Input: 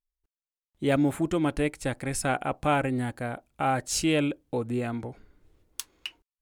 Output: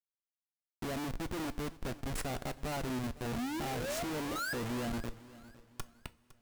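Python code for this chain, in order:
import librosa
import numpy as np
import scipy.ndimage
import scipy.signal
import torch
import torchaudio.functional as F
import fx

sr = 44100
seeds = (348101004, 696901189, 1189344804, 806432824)

y = fx.peak_eq(x, sr, hz=2900.0, db=-9.5, octaves=1.5)
y = fx.spec_paint(y, sr, seeds[0], shape='rise', start_s=3.32, length_s=1.56, low_hz=210.0, high_hz=3100.0, level_db=-34.0)
y = fx.schmitt(y, sr, flips_db=-31.5)
y = fx.echo_feedback(y, sr, ms=508, feedback_pct=33, wet_db=-19.0)
y = fx.rev_double_slope(y, sr, seeds[1], early_s=0.22, late_s=3.3, knee_db=-22, drr_db=12.5)
y = y * 10.0 ** (-7.0 / 20.0)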